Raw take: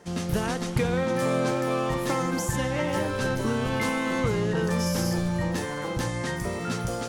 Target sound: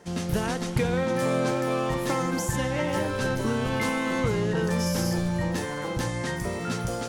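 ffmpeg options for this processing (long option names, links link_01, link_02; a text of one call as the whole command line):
ffmpeg -i in.wav -af "bandreject=frequency=1200:width=26" out.wav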